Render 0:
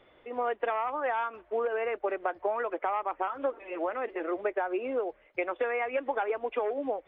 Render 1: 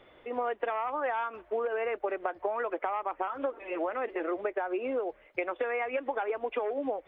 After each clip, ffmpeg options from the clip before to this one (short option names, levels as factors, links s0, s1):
-af "acompressor=threshold=0.0251:ratio=3,volume=1.41"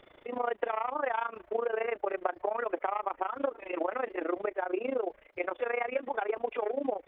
-af "tremolo=f=27:d=0.889,volume=1.5"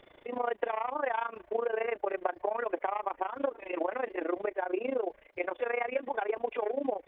-af "bandreject=f=1300:w=9.7"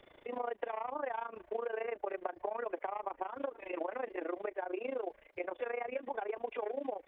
-filter_complex "[0:a]acrossover=split=340|910[s0][s1][s2];[s0]acompressor=threshold=0.00501:ratio=4[s3];[s1]acompressor=threshold=0.02:ratio=4[s4];[s2]acompressor=threshold=0.00794:ratio=4[s5];[s3][s4][s5]amix=inputs=3:normalize=0,volume=0.75"